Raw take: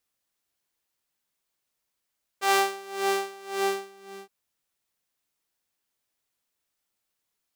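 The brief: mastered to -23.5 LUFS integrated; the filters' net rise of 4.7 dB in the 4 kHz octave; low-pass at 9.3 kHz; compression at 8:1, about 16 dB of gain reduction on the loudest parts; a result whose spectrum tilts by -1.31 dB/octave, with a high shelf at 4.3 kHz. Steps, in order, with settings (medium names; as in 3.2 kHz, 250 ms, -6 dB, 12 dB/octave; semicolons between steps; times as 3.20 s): low-pass 9.3 kHz; peaking EQ 4 kHz +8.5 dB; treble shelf 4.3 kHz -5 dB; compression 8:1, threshold -32 dBFS; trim +15.5 dB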